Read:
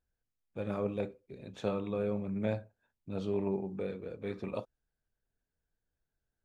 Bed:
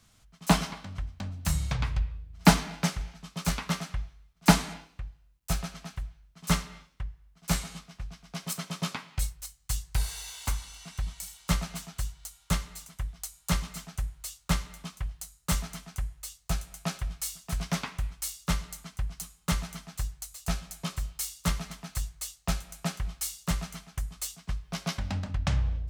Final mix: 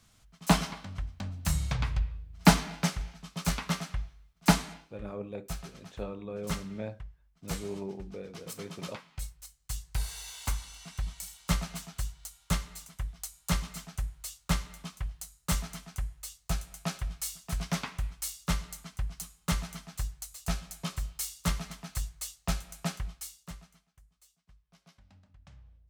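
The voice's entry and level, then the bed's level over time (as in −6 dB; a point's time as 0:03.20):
4.35 s, −5.0 dB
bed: 0:04.30 −1 dB
0:05.03 −8.5 dB
0:09.24 −8.5 dB
0:10.39 −1.5 dB
0:22.95 −1.5 dB
0:24.00 −27.5 dB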